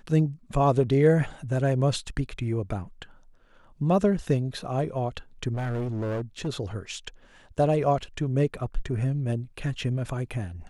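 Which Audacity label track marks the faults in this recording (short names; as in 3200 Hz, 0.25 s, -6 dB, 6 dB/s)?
5.540000	6.480000	clipped -26 dBFS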